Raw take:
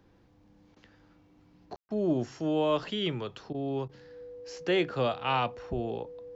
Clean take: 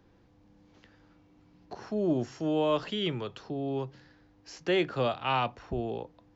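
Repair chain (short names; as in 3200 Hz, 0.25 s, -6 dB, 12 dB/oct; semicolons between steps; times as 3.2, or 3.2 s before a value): notch 490 Hz, Q 30; room tone fill 1.76–1.89; interpolate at 0.75/1.89/3.53/3.88, 12 ms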